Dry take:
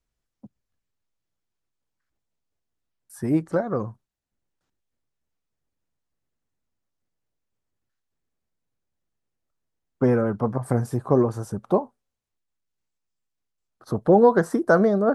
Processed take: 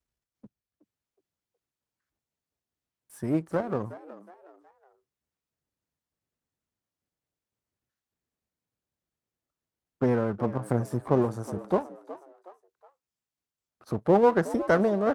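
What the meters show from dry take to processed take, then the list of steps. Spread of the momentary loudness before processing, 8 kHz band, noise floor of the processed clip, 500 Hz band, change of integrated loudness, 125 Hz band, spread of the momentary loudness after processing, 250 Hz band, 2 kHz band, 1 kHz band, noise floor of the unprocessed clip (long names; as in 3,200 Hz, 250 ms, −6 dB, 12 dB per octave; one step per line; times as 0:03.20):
13 LU, −4.5 dB, below −85 dBFS, −4.5 dB, −4.5 dB, −4.5 dB, 19 LU, −5.0 dB, −4.0 dB, −3.5 dB, −82 dBFS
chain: gain on one half-wave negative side −7 dB
high-pass filter 51 Hz
on a send: echo with shifted repeats 368 ms, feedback 38%, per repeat +89 Hz, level −16 dB
on the sum: level −2.5 dB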